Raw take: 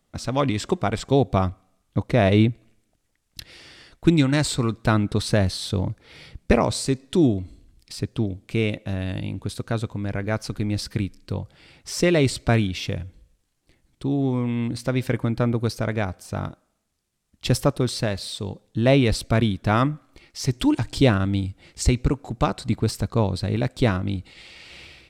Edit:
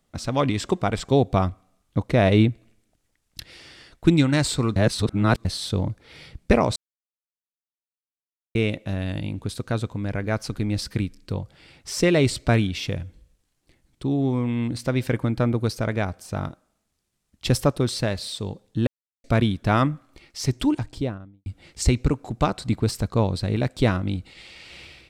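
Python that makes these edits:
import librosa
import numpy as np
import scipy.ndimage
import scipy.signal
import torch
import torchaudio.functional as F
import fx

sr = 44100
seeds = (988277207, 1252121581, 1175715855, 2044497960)

y = fx.studio_fade_out(x, sr, start_s=20.41, length_s=1.05)
y = fx.edit(y, sr, fx.reverse_span(start_s=4.76, length_s=0.69),
    fx.silence(start_s=6.76, length_s=1.79),
    fx.silence(start_s=18.87, length_s=0.37), tone=tone)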